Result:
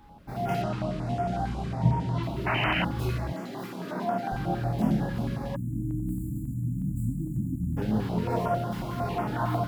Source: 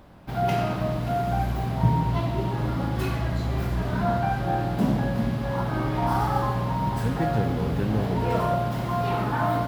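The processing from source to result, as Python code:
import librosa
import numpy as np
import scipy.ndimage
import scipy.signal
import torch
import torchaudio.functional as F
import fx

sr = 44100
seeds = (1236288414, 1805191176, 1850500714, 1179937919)

y = fx.highpass(x, sr, hz=210.0, slope=24, at=(3.3, 4.32))
y = fx.chorus_voices(y, sr, voices=4, hz=0.93, base_ms=26, depth_ms=3.3, mix_pct=45)
y = fx.lowpass(y, sr, hz=9200.0, slope=24, at=(0.62, 2.23))
y = fx.spec_paint(y, sr, seeds[0], shape='noise', start_s=2.46, length_s=0.39, low_hz=590.0, high_hz=3100.0, level_db=-25.0)
y = y + 10.0 ** (-49.0 / 20.0) * np.sin(2.0 * np.pi * 830.0 * np.arange(len(y)) / sr)
y = fx.spec_erase(y, sr, start_s=5.56, length_s=2.21, low_hz=330.0, high_hz=6800.0)
y = fx.filter_held_notch(y, sr, hz=11.0, low_hz=630.0, high_hz=4000.0)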